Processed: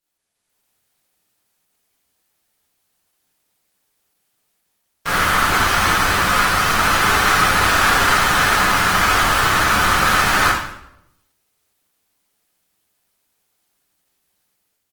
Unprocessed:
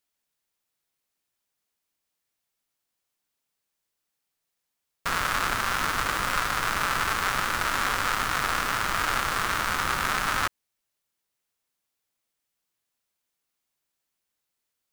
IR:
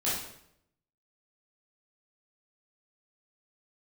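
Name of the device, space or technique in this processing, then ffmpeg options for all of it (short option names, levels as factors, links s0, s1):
speakerphone in a meeting room: -filter_complex "[1:a]atrim=start_sample=2205[s0];[0:a][s0]afir=irnorm=-1:irlink=0,asplit=2[s1][s2];[s2]adelay=90,highpass=300,lowpass=3400,asoftclip=type=hard:threshold=0.224,volume=0.1[s3];[s1][s3]amix=inputs=2:normalize=0,dynaudnorm=f=130:g=7:m=2.51,volume=0.891" -ar 48000 -c:a libopus -b:a 20k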